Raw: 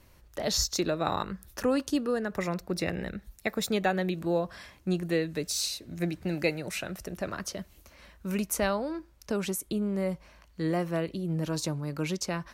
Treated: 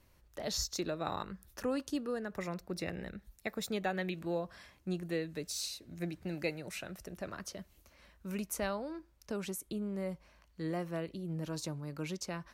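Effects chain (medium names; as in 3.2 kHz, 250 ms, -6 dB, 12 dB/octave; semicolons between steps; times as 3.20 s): 3.92–4.35 s: dynamic bell 2.3 kHz, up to +7 dB, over -49 dBFS, Q 1; trim -8 dB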